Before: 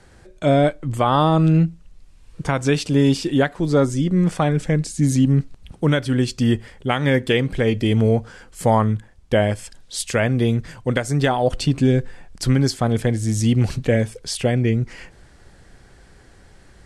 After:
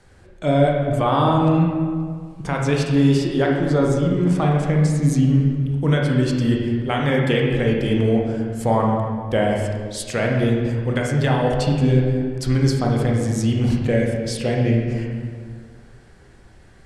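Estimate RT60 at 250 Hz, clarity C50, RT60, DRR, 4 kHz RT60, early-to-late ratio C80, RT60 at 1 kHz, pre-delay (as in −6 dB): 2.0 s, 1.5 dB, 1.9 s, −1.0 dB, 1.2 s, 3.5 dB, 1.9 s, 23 ms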